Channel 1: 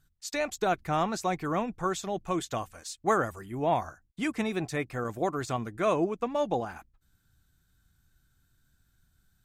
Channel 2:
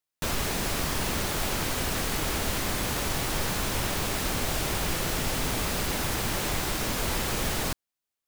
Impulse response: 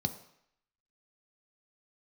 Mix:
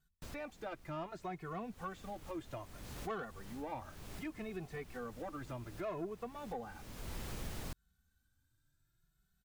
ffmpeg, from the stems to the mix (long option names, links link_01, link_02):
-filter_complex "[0:a]acrossover=split=2800[link_01][link_02];[link_02]acompressor=threshold=-55dB:ratio=4:attack=1:release=60[link_03];[link_01][link_03]amix=inputs=2:normalize=0,asoftclip=type=tanh:threshold=-21.5dB,asplit=2[link_04][link_05];[link_05]adelay=2.3,afreqshift=0.64[link_06];[link_04][link_06]amix=inputs=2:normalize=1,volume=-6dB,asplit=2[link_07][link_08];[1:a]lowshelf=frequency=260:gain=9,volume=-15.5dB,afade=type=in:start_time=1.46:duration=0.59:silence=0.421697[link_09];[link_08]apad=whole_len=364776[link_10];[link_09][link_10]sidechaincompress=threshold=-54dB:ratio=8:attack=11:release=427[link_11];[link_07][link_11]amix=inputs=2:normalize=0,acompressor=threshold=-45dB:ratio=1.5"